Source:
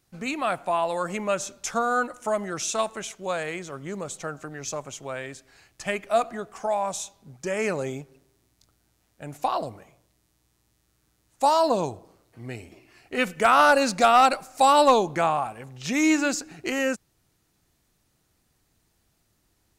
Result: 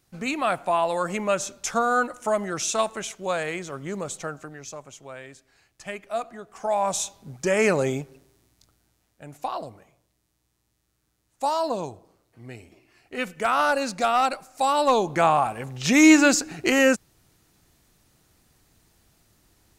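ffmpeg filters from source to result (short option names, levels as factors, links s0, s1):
-af "volume=20,afade=t=out:st=4.14:d=0.55:silence=0.375837,afade=t=in:st=6.47:d=0.56:silence=0.237137,afade=t=out:st=7.96:d=1.31:silence=0.298538,afade=t=in:st=14.82:d=0.78:silence=0.266073"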